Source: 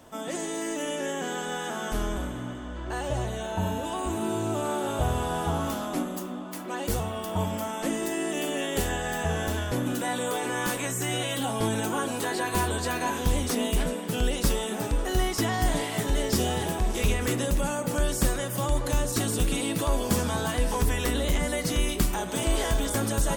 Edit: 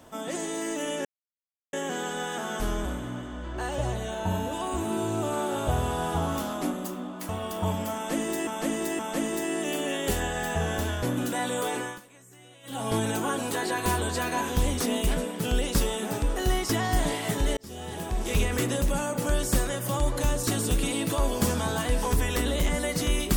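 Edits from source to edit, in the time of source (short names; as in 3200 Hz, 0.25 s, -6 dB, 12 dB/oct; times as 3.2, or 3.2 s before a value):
1.05 insert silence 0.68 s
6.61–7.02 cut
7.68–8.2 loop, 3 plays
10.44–11.57 dip -23 dB, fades 0.25 s
16.26–17.08 fade in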